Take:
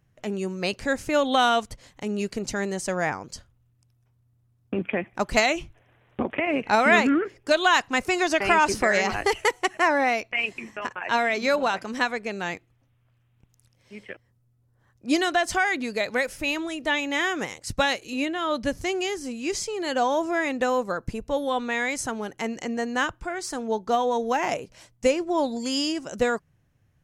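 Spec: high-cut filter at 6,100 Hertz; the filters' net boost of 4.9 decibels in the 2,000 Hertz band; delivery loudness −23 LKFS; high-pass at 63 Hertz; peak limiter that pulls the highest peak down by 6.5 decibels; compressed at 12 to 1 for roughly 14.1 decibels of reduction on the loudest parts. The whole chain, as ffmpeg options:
ffmpeg -i in.wav -af "highpass=63,lowpass=6100,equalizer=frequency=2000:width_type=o:gain=6,acompressor=threshold=-26dB:ratio=12,volume=9dB,alimiter=limit=-11.5dB:level=0:latency=1" out.wav

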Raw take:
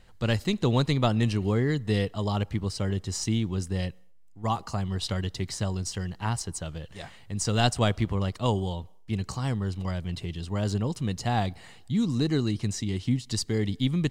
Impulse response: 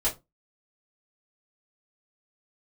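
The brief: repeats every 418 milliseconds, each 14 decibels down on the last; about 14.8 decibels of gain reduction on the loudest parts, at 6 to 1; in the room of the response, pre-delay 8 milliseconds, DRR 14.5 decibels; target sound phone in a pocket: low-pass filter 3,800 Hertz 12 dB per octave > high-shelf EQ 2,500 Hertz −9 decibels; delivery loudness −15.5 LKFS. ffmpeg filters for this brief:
-filter_complex "[0:a]acompressor=threshold=-36dB:ratio=6,aecho=1:1:418|836:0.2|0.0399,asplit=2[link_01][link_02];[1:a]atrim=start_sample=2205,adelay=8[link_03];[link_02][link_03]afir=irnorm=-1:irlink=0,volume=-23dB[link_04];[link_01][link_04]amix=inputs=2:normalize=0,lowpass=3800,highshelf=frequency=2500:gain=-9,volume=25dB"

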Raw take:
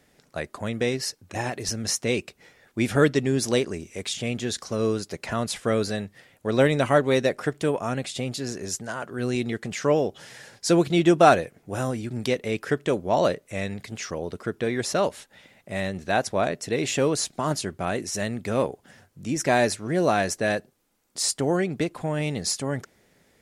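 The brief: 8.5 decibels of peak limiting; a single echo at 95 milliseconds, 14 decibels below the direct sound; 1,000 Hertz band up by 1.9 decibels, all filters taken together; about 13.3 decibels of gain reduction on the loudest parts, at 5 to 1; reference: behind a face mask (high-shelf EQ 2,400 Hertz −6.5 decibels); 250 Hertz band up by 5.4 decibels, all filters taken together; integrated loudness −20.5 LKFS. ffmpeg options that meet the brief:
ffmpeg -i in.wav -af "equalizer=frequency=250:width_type=o:gain=7,equalizer=frequency=1000:width_type=o:gain=3.5,acompressor=threshold=-24dB:ratio=5,alimiter=limit=-20.5dB:level=0:latency=1,highshelf=frequency=2400:gain=-6.5,aecho=1:1:95:0.2,volume=12dB" out.wav

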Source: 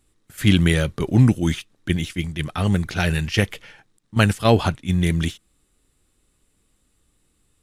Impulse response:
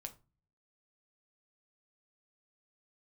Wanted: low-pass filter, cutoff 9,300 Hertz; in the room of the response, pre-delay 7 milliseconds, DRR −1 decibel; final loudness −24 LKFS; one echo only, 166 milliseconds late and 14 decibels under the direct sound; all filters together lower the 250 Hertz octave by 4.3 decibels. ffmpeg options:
-filter_complex "[0:a]lowpass=9300,equalizer=frequency=250:width_type=o:gain=-6.5,aecho=1:1:166:0.2,asplit=2[link_01][link_02];[1:a]atrim=start_sample=2205,adelay=7[link_03];[link_02][link_03]afir=irnorm=-1:irlink=0,volume=5dB[link_04];[link_01][link_04]amix=inputs=2:normalize=0,volume=-5dB"

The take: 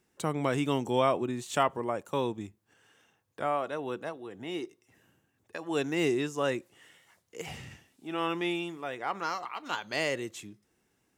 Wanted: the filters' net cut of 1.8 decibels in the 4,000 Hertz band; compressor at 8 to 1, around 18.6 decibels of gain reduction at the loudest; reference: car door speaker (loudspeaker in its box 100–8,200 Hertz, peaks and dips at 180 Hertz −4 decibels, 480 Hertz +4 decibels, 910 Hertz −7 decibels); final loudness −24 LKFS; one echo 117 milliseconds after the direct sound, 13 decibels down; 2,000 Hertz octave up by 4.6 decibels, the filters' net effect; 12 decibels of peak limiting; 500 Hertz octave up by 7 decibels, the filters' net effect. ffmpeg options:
ffmpeg -i in.wav -af "equalizer=frequency=500:width_type=o:gain=6.5,equalizer=frequency=2000:width_type=o:gain=7.5,equalizer=frequency=4000:width_type=o:gain=-7,acompressor=threshold=-36dB:ratio=8,alimiter=level_in=6dB:limit=-24dB:level=0:latency=1,volume=-6dB,highpass=100,equalizer=frequency=180:width_type=q:width=4:gain=-4,equalizer=frequency=480:width_type=q:width=4:gain=4,equalizer=frequency=910:width_type=q:width=4:gain=-7,lowpass=frequency=8200:width=0.5412,lowpass=frequency=8200:width=1.3066,aecho=1:1:117:0.224,volume=17.5dB" out.wav

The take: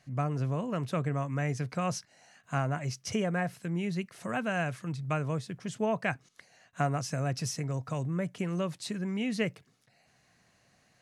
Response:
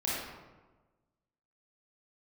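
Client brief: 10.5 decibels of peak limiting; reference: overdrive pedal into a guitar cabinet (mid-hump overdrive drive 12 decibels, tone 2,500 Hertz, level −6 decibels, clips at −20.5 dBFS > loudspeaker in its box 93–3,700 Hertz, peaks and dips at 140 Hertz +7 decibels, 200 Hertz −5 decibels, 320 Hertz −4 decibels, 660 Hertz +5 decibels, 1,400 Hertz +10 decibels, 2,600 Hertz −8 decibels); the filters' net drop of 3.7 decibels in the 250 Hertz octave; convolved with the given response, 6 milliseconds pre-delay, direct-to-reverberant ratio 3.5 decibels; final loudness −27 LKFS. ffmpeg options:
-filter_complex "[0:a]equalizer=frequency=250:width_type=o:gain=-7,alimiter=level_in=1dB:limit=-24dB:level=0:latency=1,volume=-1dB,asplit=2[link_01][link_02];[1:a]atrim=start_sample=2205,adelay=6[link_03];[link_02][link_03]afir=irnorm=-1:irlink=0,volume=-10.5dB[link_04];[link_01][link_04]amix=inputs=2:normalize=0,asplit=2[link_05][link_06];[link_06]highpass=frequency=720:poles=1,volume=12dB,asoftclip=type=tanh:threshold=-20.5dB[link_07];[link_05][link_07]amix=inputs=2:normalize=0,lowpass=frequency=2500:poles=1,volume=-6dB,highpass=93,equalizer=frequency=140:width_type=q:width=4:gain=7,equalizer=frequency=200:width_type=q:width=4:gain=-5,equalizer=frequency=320:width_type=q:width=4:gain=-4,equalizer=frequency=660:width_type=q:width=4:gain=5,equalizer=frequency=1400:width_type=q:width=4:gain=10,equalizer=frequency=2600:width_type=q:width=4:gain=-8,lowpass=frequency=3700:width=0.5412,lowpass=frequency=3700:width=1.3066,volume=4.5dB"

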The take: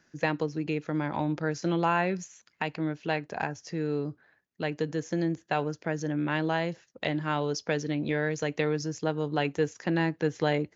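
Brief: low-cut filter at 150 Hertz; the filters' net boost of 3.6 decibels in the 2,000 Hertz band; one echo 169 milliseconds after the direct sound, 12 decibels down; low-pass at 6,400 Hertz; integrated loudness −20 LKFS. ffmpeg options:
ffmpeg -i in.wav -af "highpass=150,lowpass=6400,equalizer=frequency=2000:width_type=o:gain=4.5,aecho=1:1:169:0.251,volume=9.5dB" out.wav

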